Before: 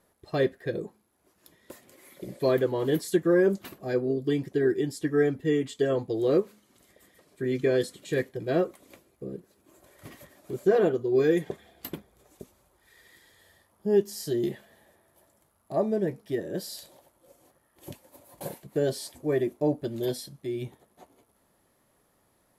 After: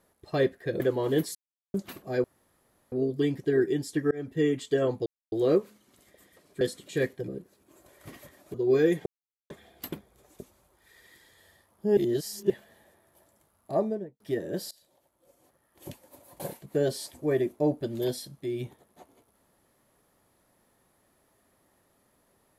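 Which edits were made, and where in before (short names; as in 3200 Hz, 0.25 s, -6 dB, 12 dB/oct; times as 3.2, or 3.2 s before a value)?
0.8–2.56 cut
3.11–3.5 mute
4 insert room tone 0.68 s
5.19–5.45 fade in
6.14 insert silence 0.26 s
7.43–7.77 cut
8.44–9.26 cut
10.52–10.99 cut
11.51 insert silence 0.44 s
13.98–14.51 reverse
15.74–16.21 studio fade out
16.72–17.9 fade in, from -23 dB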